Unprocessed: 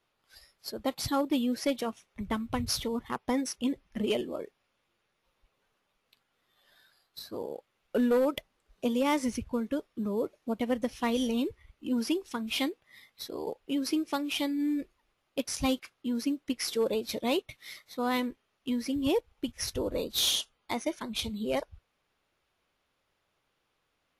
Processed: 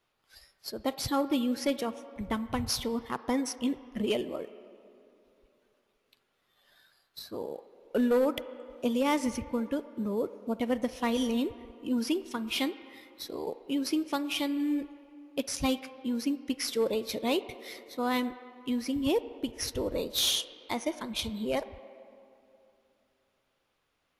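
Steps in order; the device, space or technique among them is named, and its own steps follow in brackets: filtered reverb send (on a send: HPF 320 Hz + LPF 3200 Hz 12 dB/oct + reverb RT60 2.8 s, pre-delay 34 ms, DRR 13.5 dB)

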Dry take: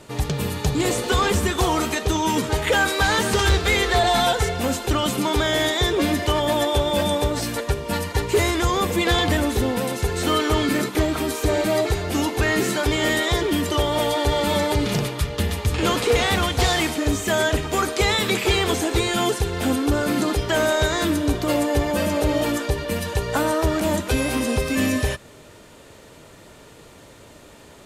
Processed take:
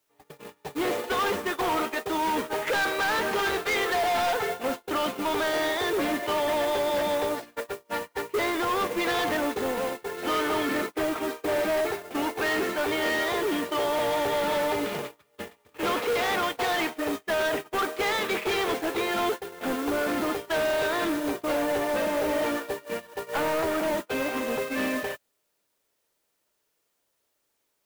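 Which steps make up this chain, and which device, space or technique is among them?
aircraft radio (BPF 370–2400 Hz; hard clip -23 dBFS, distortion -10 dB; white noise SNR 15 dB; gate -28 dBFS, range -34 dB)

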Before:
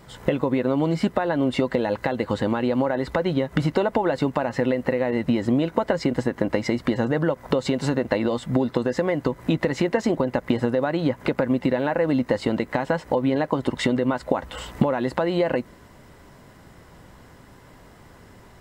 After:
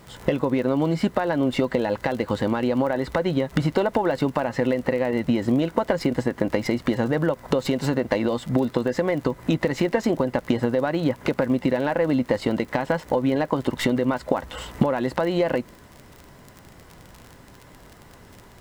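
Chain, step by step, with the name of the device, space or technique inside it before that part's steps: record under a worn stylus (tracing distortion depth 0.045 ms; crackle 38/s -31 dBFS; pink noise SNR 35 dB)

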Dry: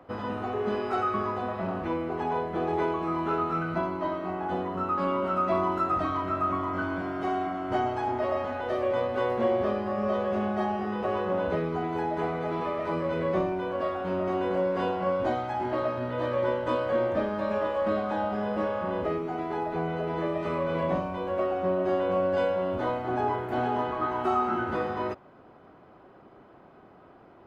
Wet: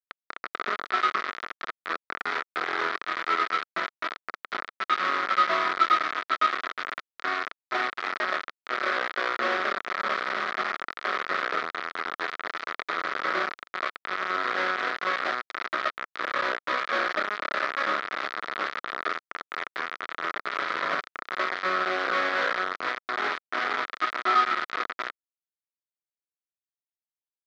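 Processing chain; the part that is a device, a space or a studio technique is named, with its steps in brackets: hand-held game console (bit-crush 4-bit; speaker cabinet 480–4000 Hz, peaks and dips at 540 Hz -5 dB, 860 Hz -9 dB, 1300 Hz +9 dB, 1900 Hz +4 dB, 2800 Hz -7 dB)

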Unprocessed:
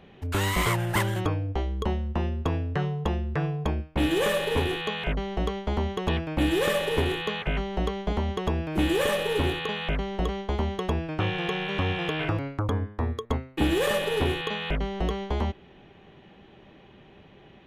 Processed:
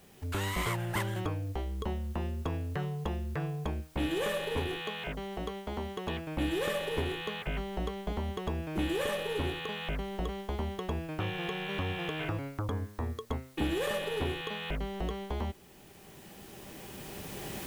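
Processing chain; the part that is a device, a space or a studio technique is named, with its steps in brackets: cheap recorder with automatic gain (white noise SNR 29 dB; recorder AGC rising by 8.7 dB/s); 4.79–6.27 low shelf 88 Hz -9.5 dB; gain -7.5 dB

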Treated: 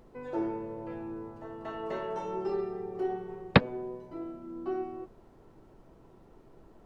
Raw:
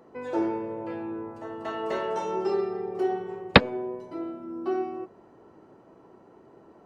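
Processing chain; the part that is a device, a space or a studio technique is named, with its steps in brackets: car interior (bell 140 Hz +7.5 dB 0.9 oct; high shelf 3900 Hz -7.5 dB; brown noise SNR 23 dB); gain -6 dB

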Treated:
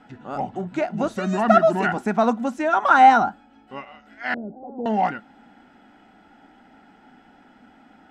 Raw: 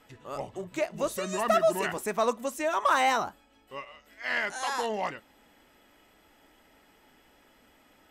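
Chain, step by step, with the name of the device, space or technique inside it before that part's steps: inside a cardboard box (LPF 5300 Hz 12 dB/oct; small resonant body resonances 220/760/1400 Hz, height 16 dB, ringing for 25 ms); 4.34–4.86 elliptic low-pass 540 Hz, stop band 80 dB

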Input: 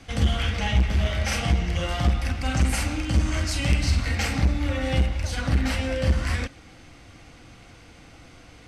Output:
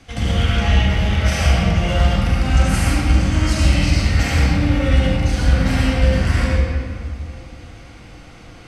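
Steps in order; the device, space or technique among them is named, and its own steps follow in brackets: stairwell (reverb RT60 2.2 s, pre-delay 65 ms, DRR -6 dB)

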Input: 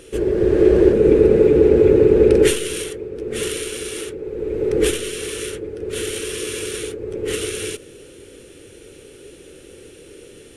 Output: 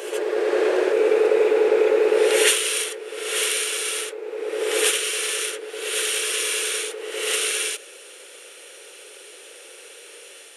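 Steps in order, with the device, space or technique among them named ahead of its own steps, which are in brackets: ghost voice (reverse; reverb RT60 1.2 s, pre-delay 48 ms, DRR 1.5 dB; reverse; HPF 620 Hz 24 dB/oct); gain +4 dB

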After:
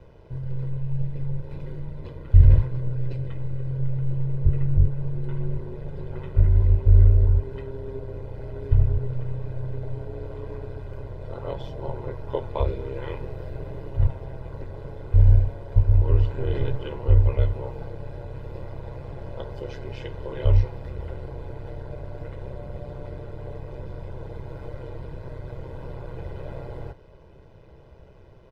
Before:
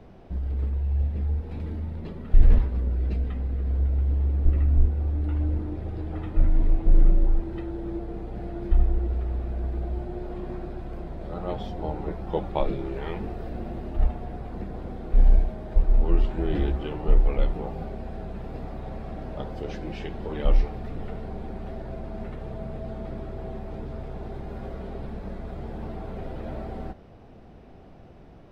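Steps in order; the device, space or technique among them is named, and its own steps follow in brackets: ring-modulated robot voice (ring modulator 65 Hz; comb 2 ms, depth 69%)

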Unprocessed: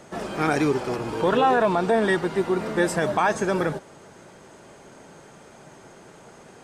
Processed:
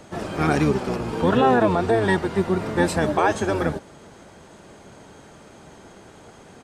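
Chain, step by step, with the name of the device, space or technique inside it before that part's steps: octave pedal (harmoniser -12 st -3 dB)

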